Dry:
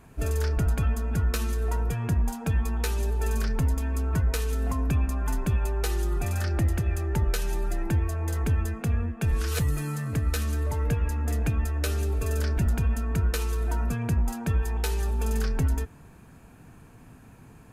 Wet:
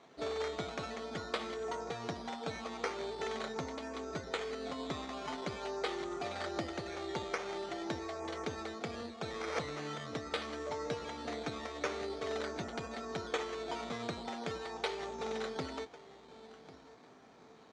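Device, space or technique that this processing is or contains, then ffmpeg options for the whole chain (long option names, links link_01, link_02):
circuit-bent sampling toy: -filter_complex "[0:a]asettb=1/sr,asplit=3[link_01][link_02][link_03];[link_01]atrim=end=4.044[link_04];[link_02]atrim=start=4.04:end=4.8,asetpts=PTS-STARTPTS,afade=type=in:duration=0.004:curve=qsin,afade=type=out:start_time=0.756:duration=0.004:curve=qsin,equalizer=frequency=940:width=2.3:gain=-9[link_05];[link_03]atrim=start=4.796[link_06];[link_04][link_05]acrossfade=duration=0.004:curve1=hsin:curve2=qsin[link_07];[link_07][link_06]acrossfade=duration=0.004:curve1=qsin:curve2=hsin,asplit=2[link_08][link_09];[link_09]adelay=1098,lowpass=frequency=2400:poles=1,volume=-16.5dB,asplit=2[link_10][link_11];[link_11]adelay=1098,lowpass=frequency=2400:poles=1,volume=0.36,asplit=2[link_12][link_13];[link_13]adelay=1098,lowpass=frequency=2400:poles=1,volume=0.36[link_14];[link_08][link_10][link_12][link_14]amix=inputs=4:normalize=0,acrusher=samples=9:mix=1:aa=0.000001:lfo=1:lforange=5.4:lforate=0.45,highpass=450,equalizer=frequency=960:width_type=q:width=4:gain=-5,equalizer=frequency=1600:width_type=q:width=4:gain=-8,equalizer=frequency=2700:width_type=q:width=4:gain=-9,equalizer=frequency=5100:width_type=q:width=4:gain=-7,lowpass=frequency=5700:width=0.5412,lowpass=frequency=5700:width=1.3066,volume=1dB"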